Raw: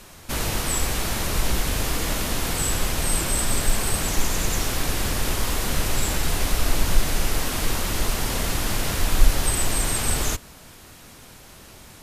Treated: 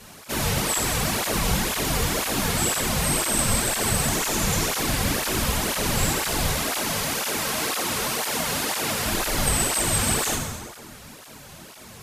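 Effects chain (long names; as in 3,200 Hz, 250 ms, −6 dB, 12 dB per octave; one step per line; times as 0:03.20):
0:06.51–0:09.06: high-pass filter 320 Hz 6 dB per octave
dense smooth reverb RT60 1.7 s, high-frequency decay 0.7×, DRR 0.5 dB
through-zero flanger with one copy inverted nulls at 2 Hz, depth 3.5 ms
level +3 dB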